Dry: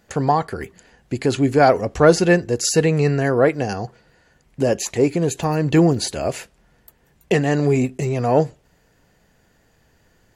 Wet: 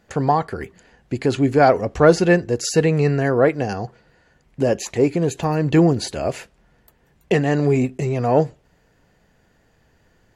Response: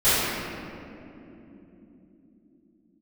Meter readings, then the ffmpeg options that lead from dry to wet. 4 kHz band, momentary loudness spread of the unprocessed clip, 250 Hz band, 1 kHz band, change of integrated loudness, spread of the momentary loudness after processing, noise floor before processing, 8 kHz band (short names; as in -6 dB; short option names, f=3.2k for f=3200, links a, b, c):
-3.0 dB, 12 LU, 0.0 dB, 0.0 dB, 0.0 dB, 12 LU, -60 dBFS, -5.0 dB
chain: -af "highshelf=f=5.8k:g=-8"